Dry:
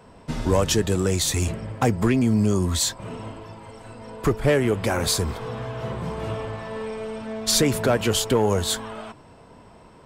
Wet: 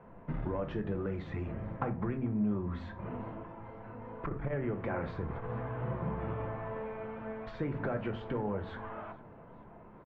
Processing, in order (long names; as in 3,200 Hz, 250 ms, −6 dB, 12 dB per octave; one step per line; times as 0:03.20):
downward compressor 6 to 1, threshold −25 dBFS, peak gain reduction 10.5 dB
low-pass filter 2,000 Hz 24 dB per octave
repeating echo 443 ms, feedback 55%, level −24 dB
rectangular room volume 280 cubic metres, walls furnished, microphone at 0.81 metres
saturating transformer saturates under 180 Hz
level −6 dB